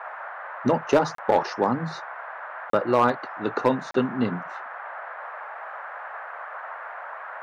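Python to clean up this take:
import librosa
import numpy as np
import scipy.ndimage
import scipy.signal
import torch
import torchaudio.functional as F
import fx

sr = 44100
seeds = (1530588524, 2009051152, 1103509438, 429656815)

y = fx.fix_declip(x, sr, threshold_db=-10.5)
y = fx.fix_interpolate(y, sr, at_s=(1.15, 2.7, 3.91), length_ms=33.0)
y = fx.noise_reduce(y, sr, print_start_s=6.91, print_end_s=7.41, reduce_db=30.0)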